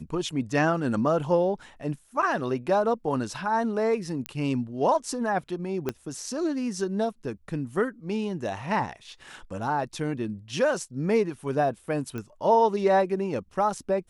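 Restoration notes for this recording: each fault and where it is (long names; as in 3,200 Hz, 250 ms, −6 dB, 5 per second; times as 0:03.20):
0:04.26: click −16 dBFS
0:05.89: click −14 dBFS
0:12.18: click −22 dBFS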